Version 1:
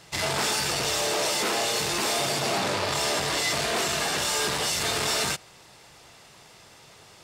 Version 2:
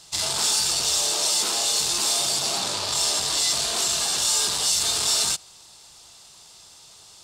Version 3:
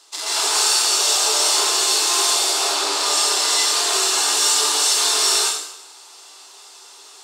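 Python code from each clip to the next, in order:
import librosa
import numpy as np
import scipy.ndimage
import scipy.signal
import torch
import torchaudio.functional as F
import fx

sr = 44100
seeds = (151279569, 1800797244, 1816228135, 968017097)

y1 = fx.graphic_eq_10(x, sr, hz=(125, 250, 500, 2000, 4000, 8000), db=(-7, -5, -7, -10, 6, 8))
y2 = scipy.signal.sosfilt(scipy.signal.cheby1(6, 6, 290.0, 'highpass', fs=sr, output='sos'), y1)
y2 = fx.rev_plate(y2, sr, seeds[0], rt60_s=0.8, hf_ratio=0.95, predelay_ms=115, drr_db=-8.0)
y2 = F.gain(torch.from_numpy(y2), 2.5).numpy()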